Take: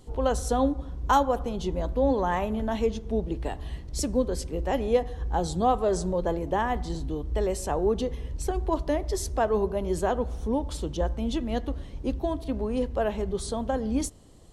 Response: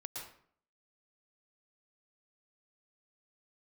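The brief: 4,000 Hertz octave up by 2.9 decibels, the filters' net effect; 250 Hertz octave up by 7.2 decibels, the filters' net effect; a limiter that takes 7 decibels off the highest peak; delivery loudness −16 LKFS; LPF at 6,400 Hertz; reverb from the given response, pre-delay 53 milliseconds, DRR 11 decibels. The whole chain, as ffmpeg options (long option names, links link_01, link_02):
-filter_complex "[0:a]lowpass=6400,equalizer=frequency=250:width_type=o:gain=8.5,equalizer=frequency=4000:width_type=o:gain=4.5,alimiter=limit=-14.5dB:level=0:latency=1,asplit=2[link_01][link_02];[1:a]atrim=start_sample=2205,adelay=53[link_03];[link_02][link_03]afir=irnorm=-1:irlink=0,volume=-9dB[link_04];[link_01][link_04]amix=inputs=2:normalize=0,volume=9.5dB"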